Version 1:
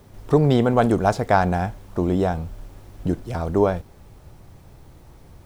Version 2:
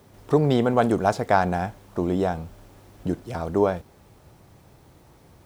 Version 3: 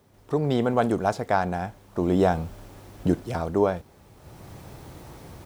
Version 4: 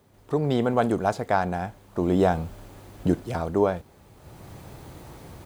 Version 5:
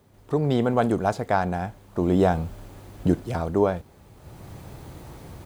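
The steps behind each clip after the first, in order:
HPF 140 Hz 6 dB/oct; gain -1.5 dB
AGC gain up to 16.5 dB; gain -7 dB
notch 5500 Hz, Q 14
low shelf 200 Hz +3.5 dB

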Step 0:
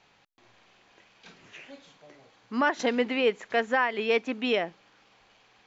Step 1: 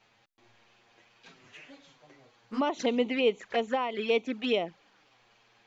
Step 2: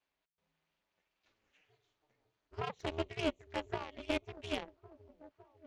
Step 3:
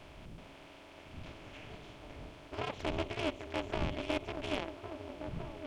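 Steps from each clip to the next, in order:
envelope flanger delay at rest 9.2 ms, full sweep at -23 dBFS
delay with a stepping band-pass 0.555 s, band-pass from 230 Hz, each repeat 0.7 oct, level -7.5 dB; ring modulator 160 Hz; added harmonics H 7 -19 dB, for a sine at -13.5 dBFS; gain -5.5 dB
per-bin compression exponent 0.4; wind noise 140 Hz -44 dBFS; gain -3.5 dB

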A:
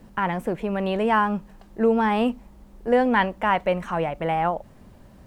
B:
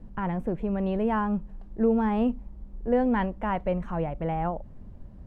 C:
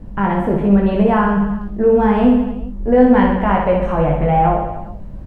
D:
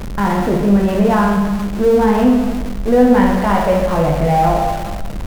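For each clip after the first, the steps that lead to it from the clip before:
tilt -3.5 dB/oct; gain -8.5 dB
in parallel at +3 dB: limiter -20 dBFS, peak gain reduction 7 dB; on the sum: doubler 20 ms -3 dB; reverse bouncing-ball echo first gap 60 ms, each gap 1.15×, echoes 5; gain +2.5 dB
zero-crossing step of -21.5 dBFS; vibrato 0.59 Hz 24 cents; on a send at -11 dB: reverb RT60 0.35 s, pre-delay 0.11 s; on the sum: gain -1 dB

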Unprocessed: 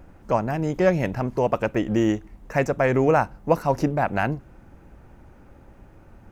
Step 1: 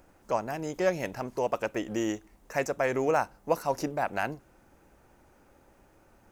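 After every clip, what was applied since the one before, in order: tone controls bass -10 dB, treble +9 dB; gain -6 dB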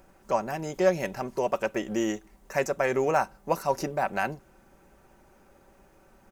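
comb 5.2 ms, depth 41%; gain +1.5 dB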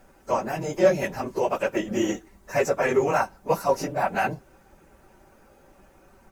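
phase scrambler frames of 50 ms; gain +3 dB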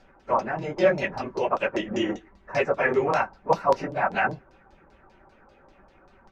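LFO low-pass saw down 5.1 Hz 890–5100 Hz; gain -2 dB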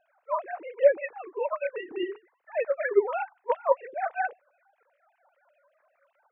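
sine-wave speech; gain -3 dB

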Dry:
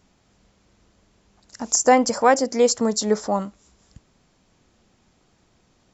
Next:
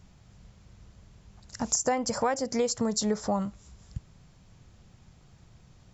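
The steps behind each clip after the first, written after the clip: resonant low shelf 190 Hz +9.5 dB, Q 1.5; compressor 6:1, threshold -24 dBFS, peak gain reduction 13 dB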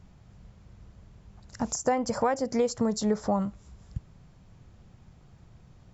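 high shelf 2500 Hz -9 dB; gain +2 dB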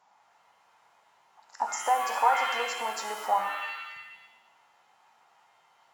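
resonant high-pass 870 Hz, resonance Q 4.9; shimmer reverb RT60 1 s, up +7 st, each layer -2 dB, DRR 5 dB; gain -4.5 dB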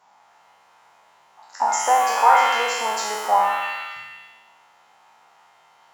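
spectral trails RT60 1.09 s; gain +5.5 dB

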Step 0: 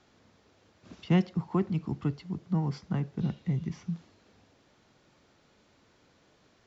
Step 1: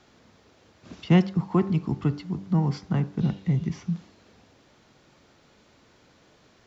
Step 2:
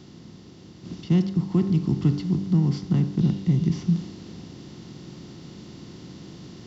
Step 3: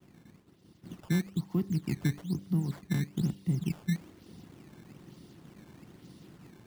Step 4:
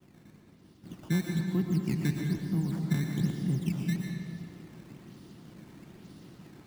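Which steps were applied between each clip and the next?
de-hum 97.28 Hz, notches 18; gain +6 dB
per-bin compression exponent 0.6; band shelf 1100 Hz -11.5 dB 2.9 oct; vocal rider 0.5 s
reverb removal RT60 0.69 s; decimation with a swept rate 13×, swing 160% 1.1 Hz; expander -43 dBFS; gain -8 dB
digital reverb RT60 1.9 s, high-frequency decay 0.75×, pre-delay 75 ms, DRR 1.5 dB

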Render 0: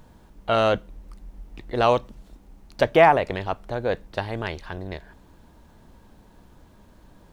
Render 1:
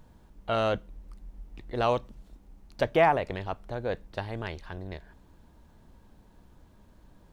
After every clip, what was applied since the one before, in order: low shelf 170 Hz +4 dB; gain -7 dB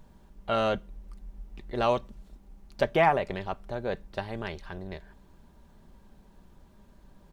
comb 5.1 ms, depth 37%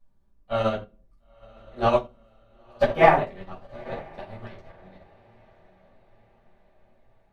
diffused feedback echo 0.96 s, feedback 53%, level -9 dB; shoebox room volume 410 m³, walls furnished, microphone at 6 m; upward expander 2.5:1, over -26 dBFS; gain -1 dB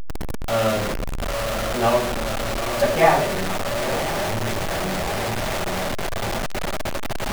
zero-crossing step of -16.5 dBFS; gain -2 dB

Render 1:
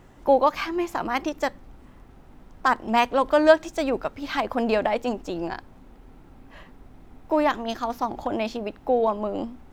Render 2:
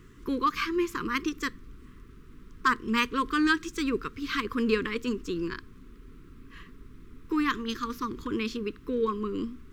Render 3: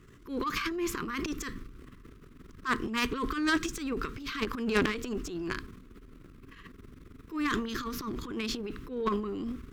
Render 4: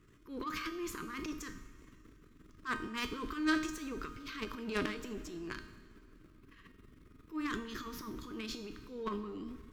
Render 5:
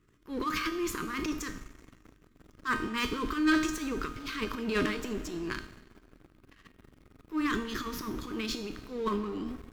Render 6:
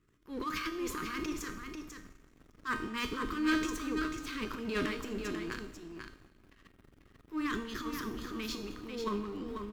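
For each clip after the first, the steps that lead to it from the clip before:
elliptic band-stop 440–1100 Hz, stop band 50 dB
transient shaper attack -11 dB, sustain +11 dB; added harmonics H 4 -8 dB, 6 -13 dB, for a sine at -11.5 dBFS; gain -3.5 dB
resonator 310 Hz, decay 0.66 s, mix 80%; plate-style reverb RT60 2.4 s, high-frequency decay 0.95×, DRR 13.5 dB; gain +4.5 dB
sample leveller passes 2
echo 0.492 s -6.5 dB; gain -4.5 dB

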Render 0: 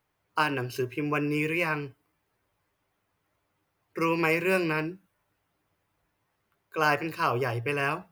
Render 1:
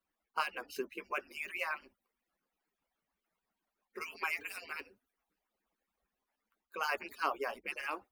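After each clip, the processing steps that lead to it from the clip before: median-filter separation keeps percussive; gain -6.5 dB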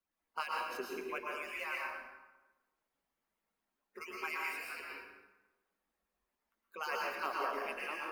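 plate-style reverb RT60 1.1 s, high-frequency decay 0.7×, pre-delay 0.1 s, DRR -3 dB; gain -5 dB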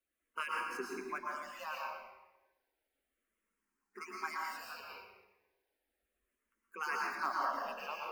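endless phaser -0.33 Hz; gain +3 dB

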